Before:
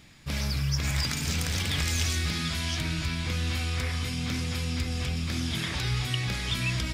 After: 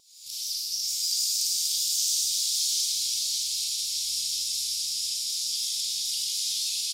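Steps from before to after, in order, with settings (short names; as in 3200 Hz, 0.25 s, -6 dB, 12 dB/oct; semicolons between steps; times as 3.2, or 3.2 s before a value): recorder AGC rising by 67 dB/s; inverse Chebyshev high-pass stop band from 1800 Hz, stop band 50 dB; Schroeder reverb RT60 2.2 s, combs from 32 ms, DRR -6 dB; vibrato 6.8 Hz 42 cents; echo 0.376 s -9 dB; lo-fi delay 0.616 s, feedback 55%, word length 11-bit, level -5 dB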